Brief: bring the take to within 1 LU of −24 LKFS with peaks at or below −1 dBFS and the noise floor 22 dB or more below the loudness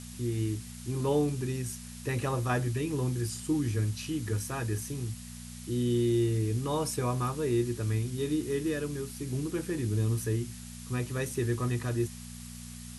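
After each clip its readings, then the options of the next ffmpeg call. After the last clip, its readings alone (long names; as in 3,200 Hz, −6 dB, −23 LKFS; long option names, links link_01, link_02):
mains hum 60 Hz; hum harmonics up to 240 Hz; level of the hum −43 dBFS; background noise floor −44 dBFS; target noise floor −54 dBFS; integrated loudness −31.5 LKFS; sample peak −17.5 dBFS; target loudness −24.0 LKFS
→ -af "bandreject=frequency=60:width_type=h:width=4,bandreject=frequency=120:width_type=h:width=4,bandreject=frequency=180:width_type=h:width=4,bandreject=frequency=240:width_type=h:width=4"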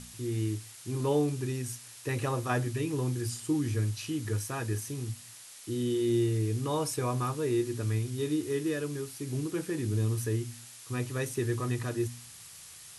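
mains hum none found; background noise floor −49 dBFS; target noise floor −54 dBFS
→ -af "afftdn=noise_reduction=6:noise_floor=-49"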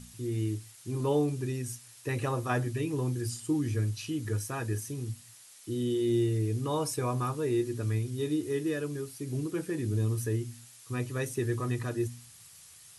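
background noise floor −54 dBFS; integrated loudness −32.0 LKFS; sample peak −17.0 dBFS; target loudness −24.0 LKFS
→ -af "volume=8dB"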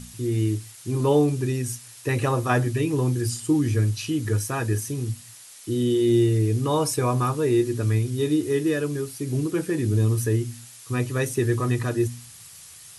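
integrated loudness −24.0 LKFS; sample peak −9.0 dBFS; background noise floor −46 dBFS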